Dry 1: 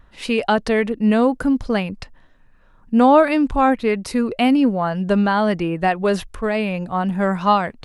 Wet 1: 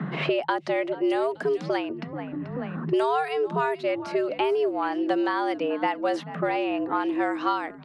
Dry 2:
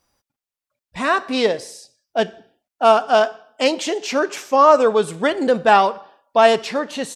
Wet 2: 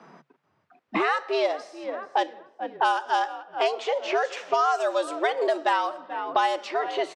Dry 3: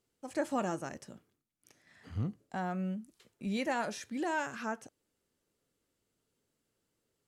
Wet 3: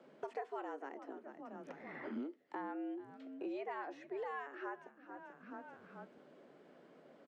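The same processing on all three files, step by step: frequency shift +140 Hz; on a send: frequency-shifting echo 0.434 s, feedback 36%, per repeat -59 Hz, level -20 dB; on the sum: low-pass opened by the level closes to 1700 Hz, open at -10 dBFS; three-band squash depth 100%; gain -8 dB

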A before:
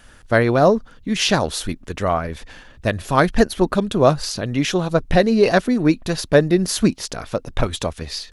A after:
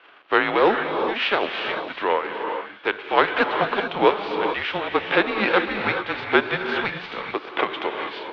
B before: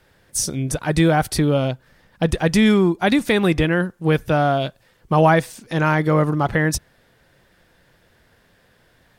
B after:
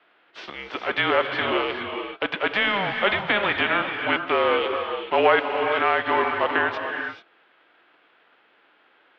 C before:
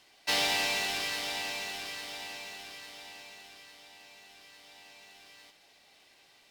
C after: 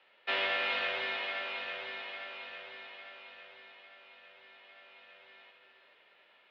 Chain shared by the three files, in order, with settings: spectral whitening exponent 0.6; non-linear reverb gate 0.46 s rising, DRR 4.5 dB; mistuned SSB -200 Hz 600–3400 Hz

